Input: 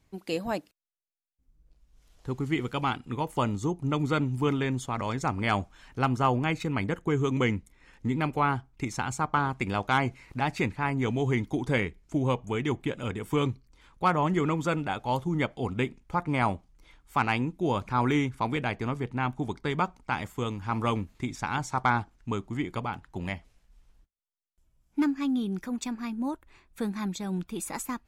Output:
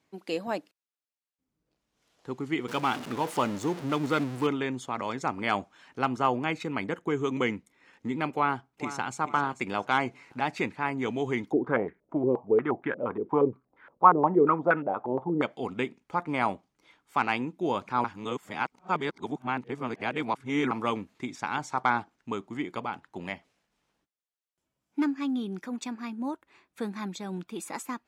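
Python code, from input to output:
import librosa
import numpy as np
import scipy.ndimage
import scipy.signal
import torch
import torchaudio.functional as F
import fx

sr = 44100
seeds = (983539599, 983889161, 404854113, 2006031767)

y = fx.zero_step(x, sr, step_db=-31.5, at=(2.68, 4.47))
y = fx.echo_throw(y, sr, start_s=8.33, length_s=0.83, ms=440, feedback_pct=35, wet_db=-12.5)
y = fx.filter_held_lowpass(y, sr, hz=8.5, low_hz=380.0, high_hz=1600.0, at=(11.51, 15.41), fade=0.02)
y = fx.edit(y, sr, fx.reverse_span(start_s=18.04, length_s=2.67), tone=tone)
y = scipy.signal.sosfilt(scipy.signal.butter(2, 230.0, 'highpass', fs=sr, output='sos'), y)
y = fx.high_shelf(y, sr, hz=8700.0, db=-10.5)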